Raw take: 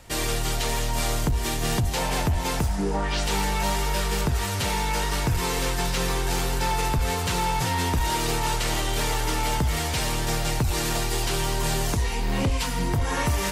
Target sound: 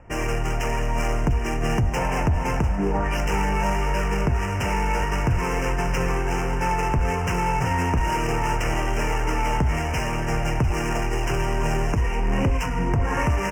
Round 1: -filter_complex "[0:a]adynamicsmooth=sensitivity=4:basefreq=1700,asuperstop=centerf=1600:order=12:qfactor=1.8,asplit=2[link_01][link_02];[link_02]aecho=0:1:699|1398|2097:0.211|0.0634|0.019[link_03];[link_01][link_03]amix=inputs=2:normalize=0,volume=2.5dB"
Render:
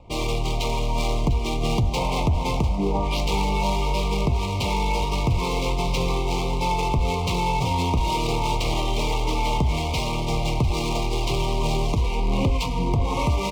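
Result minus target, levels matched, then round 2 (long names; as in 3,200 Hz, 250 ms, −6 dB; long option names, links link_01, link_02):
4,000 Hz band +7.0 dB
-filter_complex "[0:a]adynamicsmooth=sensitivity=4:basefreq=1700,asuperstop=centerf=3900:order=12:qfactor=1.8,asplit=2[link_01][link_02];[link_02]aecho=0:1:699|1398|2097:0.211|0.0634|0.019[link_03];[link_01][link_03]amix=inputs=2:normalize=0,volume=2.5dB"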